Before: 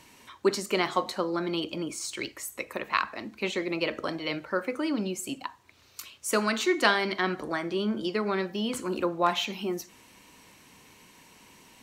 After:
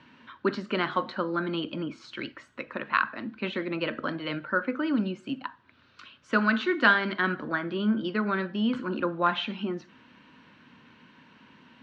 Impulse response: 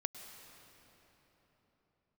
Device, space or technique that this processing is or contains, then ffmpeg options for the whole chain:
guitar cabinet: -af "highpass=88,equalizer=f=150:t=q:w=4:g=4,equalizer=f=240:t=q:w=4:g=8,equalizer=f=410:t=q:w=4:g=-5,equalizer=f=750:t=q:w=4:g=-6,equalizer=f=1.5k:t=q:w=4:g=9,equalizer=f=2.2k:t=q:w=4:g=-5,lowpass=f=3.5k:w=0.5412,lowpass=f=3.5k:w=1.3066"

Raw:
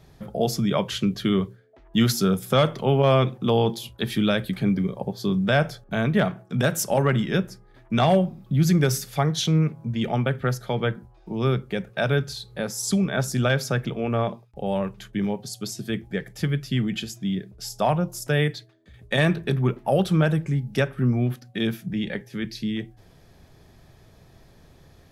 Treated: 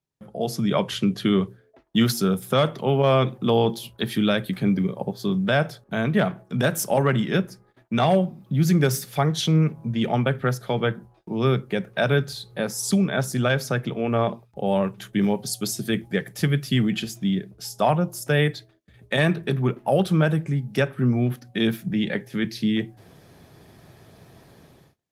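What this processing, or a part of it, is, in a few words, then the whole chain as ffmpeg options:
video call: -filter_complex "[0:a]asplit=3[a][b][c];[a]afade=t=out:st=15.01:d=0.02[d];[b]equalizer=f=11k:w=0.35:g=5,afade=t=in:st=15.01:d=0.02,afade=t=out:st=16.86:d=0.02[e];[c]afade=t=in:st=16.86:d=0.02[f];[d][e][f]amix=inputs=3:normalize=0,highpass=110,dynaudnorm=f=110:g=9:m=13.5dB,agate=range=-26dB:threshold=-46dB:ratio=16:detection=peak,volume=-7dB" -ar 48000 -c:a libopus -b:a 32k

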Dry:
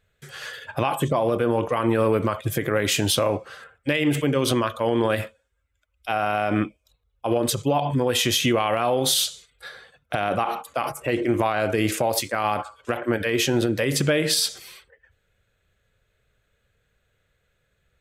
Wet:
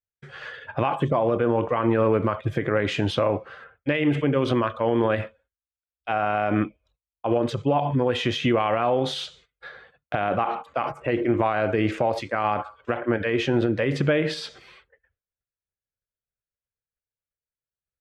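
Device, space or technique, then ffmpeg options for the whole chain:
hearing-loss simulation: -af "lowpass=2.4k,agate=range=-33dB:threshold=-50dB:ratio=3:detection=peak"

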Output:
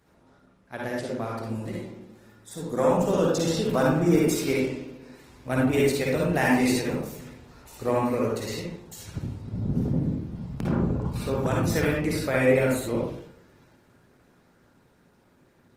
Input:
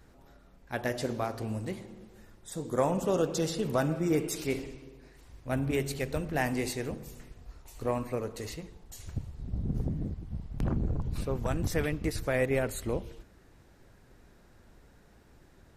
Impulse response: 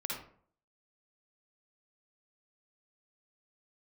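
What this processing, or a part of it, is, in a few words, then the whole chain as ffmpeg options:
far-field microphone of a smart speaker: -filter_complex "[1:a]atrim=start_sample=2205[a];[0:a][a]afir=irnorm=-1:irlink=0,highpass=110,dynaudnorm=f=380:g=17:m=6.5dB" -ar 48000 -c:a libopus -b:a 20k

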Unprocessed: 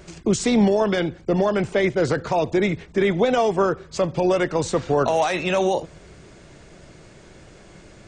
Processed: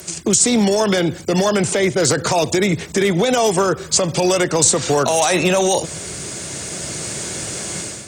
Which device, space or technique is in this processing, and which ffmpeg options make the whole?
FM broadcast chain: -filter_complex "[0:a]highpass=f=74:w=0.5412,highpass=f=74:w=1.3066,dynaudnorm=f=650:g=3:m=11.5dB,acrossover=split=98|1400[a][b][c];[a]acompressor=threshold=-43dB:ratio=4[d];[b]acompressor=threshold=-18dB:ratio=4[e];[c]acompressor=threshold=-32dB:ratio=4[f];[d][e][f]amix=inputs=3:normalize=0,aemphasis=mode=production:type=50fm,alimiter=limit=-13dB:level=0:latency=1:release=89,asoftclip=type=hard:threshold=-15dB,lowpass=f=15k:w=0.5412,lowpass=f=15k:w=1.3066,aemphasis=mode=production:type=50fm,volume=5.5dB"

